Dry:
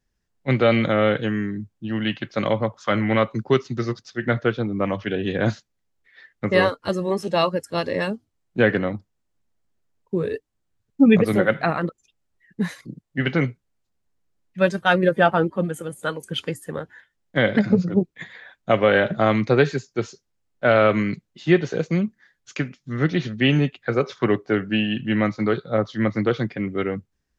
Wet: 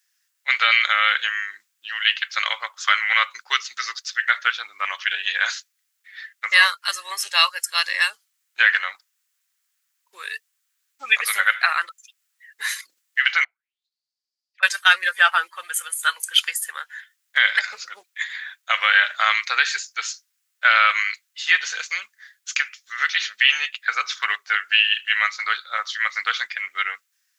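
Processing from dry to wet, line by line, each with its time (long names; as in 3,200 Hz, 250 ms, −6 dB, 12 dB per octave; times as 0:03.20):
0:13.44–0:14.63: envelope filter 720–4,900 Hz, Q 8.7, down, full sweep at −25 dBFS
whole clip: high-pass filter 1,400 Hz 24 dB per octave; high-shelf EQ 7,900 Hz +11 dB; boost into a limiter +12.5 dB; level −2 dB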